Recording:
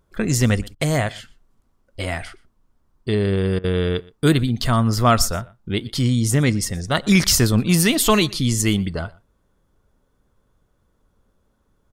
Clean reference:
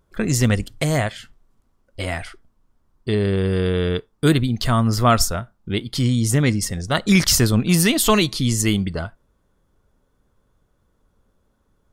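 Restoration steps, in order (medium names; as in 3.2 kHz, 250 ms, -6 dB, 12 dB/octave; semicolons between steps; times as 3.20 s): interpolate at 0.75/3.59 s, 49 ms; inverse comb 121 ms -23.5 dB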